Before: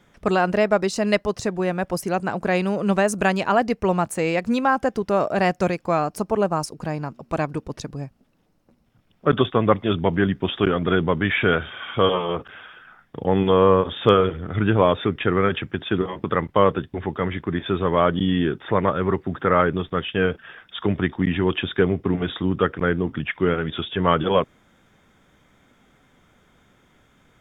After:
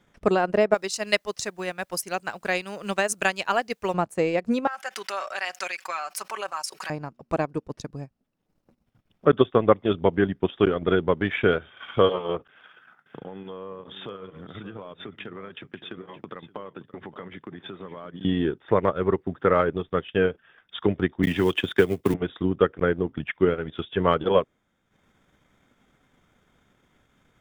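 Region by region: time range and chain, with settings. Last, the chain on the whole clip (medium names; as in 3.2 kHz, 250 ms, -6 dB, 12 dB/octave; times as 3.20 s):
0.74–3.94 s: tilt shelf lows -8.5 dB, about 1.2 kHz + word length cut 10-bit, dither triangular
4.67–6.90 s: Chebyshev high-pass 1.8 kHz + comb 5.3 ms, depth 57% + level flattener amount 70%
12.48–18.25 s: high-pass 120 Hz 24 dB/octave + compression 5:1, threshold -31 dBFS + delay 572 ms -11.5 dB
21.23–22.14 s: companding laws mixed up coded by A + treble shelf 2.2 kHz +10.5 dB + three bands compressed up and down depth 70%
whole clip: dynamic bell 440 Hz, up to +5 dB, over -30 dBFS, Q 0.98; transient shaper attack +4 dB, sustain -9 dB; trim -6 dB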